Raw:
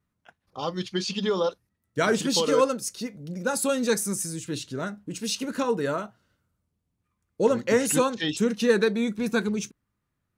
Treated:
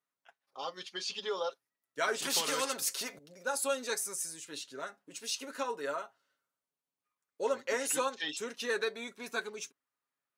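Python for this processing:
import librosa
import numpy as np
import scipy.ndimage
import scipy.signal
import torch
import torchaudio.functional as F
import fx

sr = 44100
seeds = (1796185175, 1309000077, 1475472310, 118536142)

y = scipy.signal.sosfilt(scipy.signal.butter(2, 560.0, 'highpass', fs=sr, output='sos'), x)
y = y + 0.52 * np.pad(y, (int(7.3 * sr / 1000.0), 0))[:len(y)]
y = fx.spectral_comp(y, sr, ratio=2.0, at=(2.22, 3.19))
y = y * 10.0 ** (-7.0 / 20.0)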